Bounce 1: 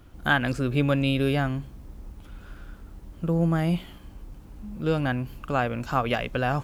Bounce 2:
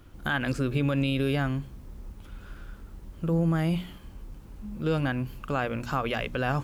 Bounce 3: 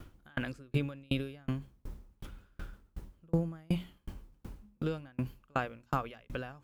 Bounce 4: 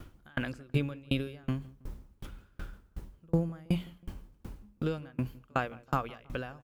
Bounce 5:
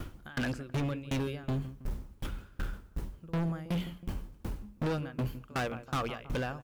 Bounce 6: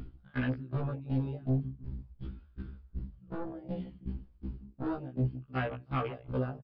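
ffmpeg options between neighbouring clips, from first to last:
-af "alimiter=limit=-16.5dB:level=0:latency=1,equalizer=f=710:t=o:w=0.47:g=-3.5,bandreject=f=60:t=h:w=6,bandreject=f=120:t=h:w=6,bandreject=f=180:t=h:w=6,bandreject=f=240:t=h:w=6,bandreject=f=300:t=h:w=6"
-af "areverse,acompressor=mode=upward:threshold=-29dB:ratio=2.5,areverse,aeval=exprs='val(0)*pow(10,-37*if(lt(mod(2.7*n/s,1),2*abs(2.7)/1000),1-mod(2.7*n/s,1)/(2*abs(2.7)/1000),(mod(2.7*n/s,1)-2*abs(2.7)/1000)/(1-2*abs(2.7)/1000))/20)':c=same"
-filter_complex "[0:a]asplit=2[a][b];[b]adelay=161,lowpass=f=1.6k:p=1,volume=-21.5dB,asplit=2[c][d];[d]adelay=161,lowpass=f=1.6k:p=1,volume=0.42,asplit=2[e][f];[f]adelay=161,lowpass=f=1.6k:p=1,volume=0.42[g];[a][c][e][g]amix=inputs=4:normalize=0,volume=2dB"
-filter_complex "[0:a]asplit=2[a][b];[b]alimiter=limit=-24dB:level=0:latency=1:release=264,volume=-3dB[c];[a][c]amix=inputs=2:normalize=0,volume=32dB,asoftclip=hard,volume=-32dB,volume=3.5dB"
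-af "afwtdn=0.0158,aresample=11025,aresample=44100,afftfilt=real='re*1.73*eq(mod(b,3),0)':imag='im*1.73*eq(mod(b,3),0)':win_size=2048:overlap=0.75,volume=2dB"

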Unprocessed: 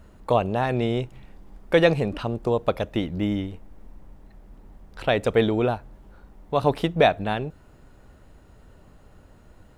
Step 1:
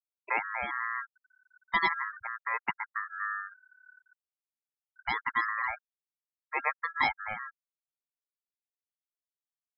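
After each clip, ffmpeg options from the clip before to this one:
-af "aeval=exprs='val(0)*sin(2*PI*1500*n/s)':c=same,afftfilt=real='re*gte(hypot(re,im),0.0708)':imag='im*gte(hypot(re,im),0.0708)':win_size=1024:overlap=0.75,volume=-7dB"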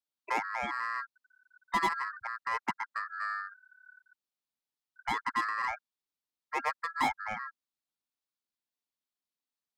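-filter_complex "[0:a]equalizer=f=250:t=o:w=1:g=9,equalizer=f=1k:t=o:w=1:g=5,equalizer=f=4k:t=o:w=1:g=7,acrossover=split=130|1100[a][b][c];[c]asoftclip=type=tanh:threshold=-29.5dB[d];[a][b][d]amix=inputs=3:normalize=0,volume=-2.5dB"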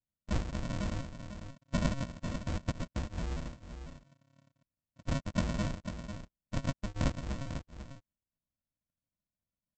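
-af "aresample=16000,acrusher=samples=39:mix=1:aa=0.000001,aresample=44100,aecho=1:1:496:0.355"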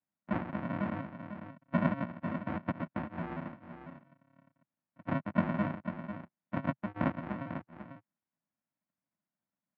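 -af "highpass=f=130:w=0.5412,highpass=f=130:w=1.3066,equalizer=f=130:t=q:w=4:g=-9,equalizer=f=460:t=q:w=4:g=-9,equalizer=f=840:t=q:w=4:g=3,lowpass=f=2.1k:w=0.5412,lowpass=f=2.1k:w=1.3066,volume=5dB"

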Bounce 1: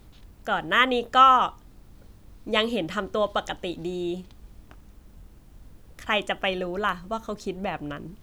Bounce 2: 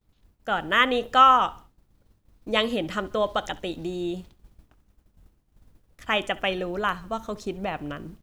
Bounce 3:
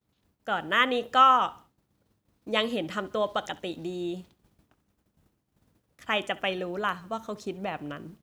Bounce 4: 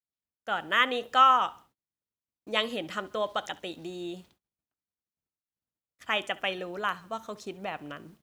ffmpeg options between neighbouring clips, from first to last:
-af "agate=range=-33dB:threshold=-38dB:ratio=3:detection=peak,aecho=1:1:68|136|204:0.0841|0.032|0.0121"
-af "highpass=110,volume=-3dB"
-af "agate=range=-26dB:threshold=-57dB:ratio=16:detection=peak,lowshelf=f=500:g=-7"

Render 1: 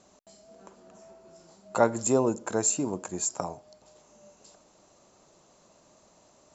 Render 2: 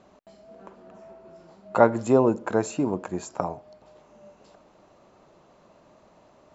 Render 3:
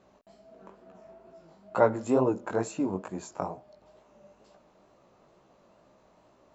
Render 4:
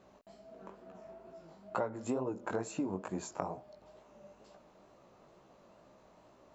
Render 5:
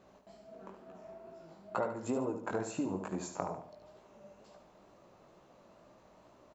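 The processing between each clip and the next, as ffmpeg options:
-af "lowpass=2.7k,volume=5dB"
-af "flanger=delay=15:depth=6.6:speed=2.2,volume=-2dB"
-af "acompressor=threshold=-31dB:ratio=12"
-af "aecho=1:1:73|146|219|292:0.398|0.155|0.0606|0.0236"

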